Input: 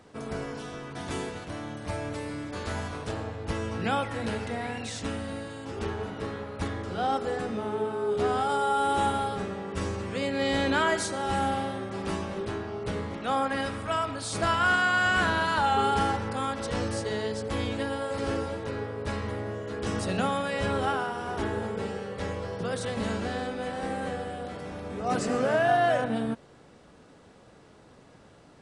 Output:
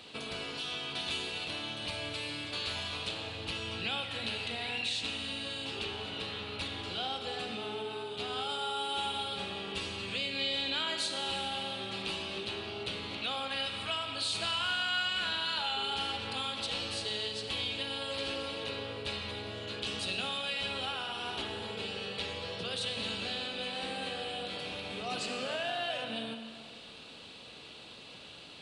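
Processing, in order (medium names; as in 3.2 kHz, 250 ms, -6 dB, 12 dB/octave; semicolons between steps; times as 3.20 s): high-order bell 3.3 kHz +15 dB 1.1 oct; compression 3:1, threshold -38 dBFS, peak gain reduction 15.5 dB; tilt EQ +1.5 dB/octave; Schroeder reverb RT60 2.2 s, combs from 31 ms, DRR 6.5 dB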